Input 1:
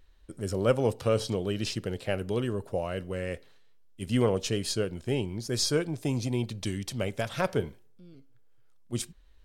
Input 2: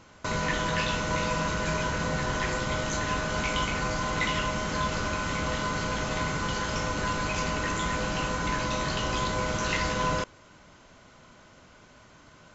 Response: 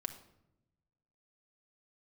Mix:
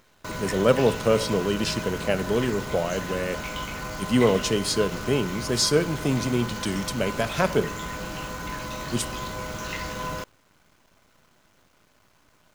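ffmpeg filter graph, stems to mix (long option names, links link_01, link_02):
-filter_complex "[0:a]highpass=frequency=120:width=0.5412,highpass=frequency=120:width=1.3066,volume=2dB,asplit=2[link_01][link_02];[link_02]volume=-4dB[link_03];[1:a]acrusher=bits=7:dc=4:mix=0:aa=0.000001,volume=-4.5dB[link_04];[2:a]atrim=start_sample=2205[link_05];[link_03][link_05]afir=irnorm=-1:irlink=0[link_06];[link_01][link_04][link_06]amix=inputs=3:normalize=0"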